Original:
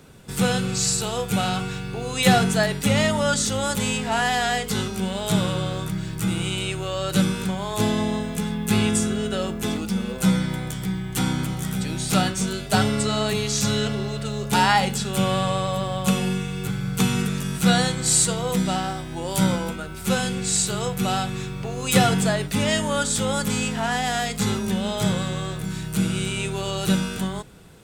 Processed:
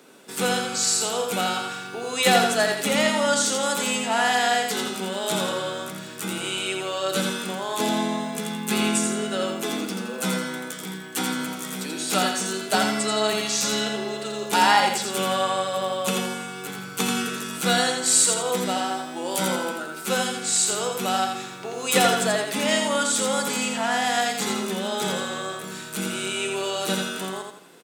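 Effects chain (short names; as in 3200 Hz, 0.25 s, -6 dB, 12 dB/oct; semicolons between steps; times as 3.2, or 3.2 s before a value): HPF 250 Hz 24 dB/oct; on a send: feedback echo 84 ms, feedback 37%, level -4.5 dB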